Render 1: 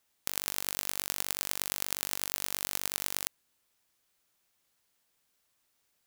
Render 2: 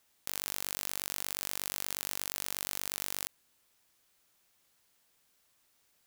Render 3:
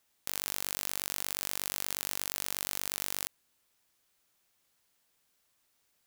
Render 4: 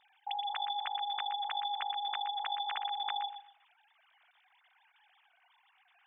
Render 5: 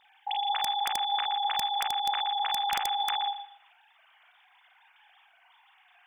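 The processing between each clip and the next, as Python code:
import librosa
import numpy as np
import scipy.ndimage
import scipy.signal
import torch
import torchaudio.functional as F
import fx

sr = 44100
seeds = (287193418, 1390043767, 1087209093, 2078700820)

y1 = fx.level_steps(x, sr, step_db=16)
y1 = y1 * 10.0 ** (8.5 / 20.0)
y2 = fx.upward_expand(y1, sr, threshold_db=-48.0, expansion=1.5)
y2 = y2 * 10.0 ** (3.0 / 20.0)
y3 = fx.sine_speech(y2, sr)
y3 = fx.echo_feedback(y3, sr, ms=121, feedback_pct=23, wet_db=-10)
y4 = fx.room_early_taps(y3, sr, ms=(36, 51), db=(-7.0, -5.5))
y4 = (np.mod(10.0 ** (24.5 / 20.0) * y4 + 1.0, 2.0) - 1.0) / 10.0 ** (24.5 / 20.0)
y4 = y4 * 10.0 ** (5.5 / 20.0)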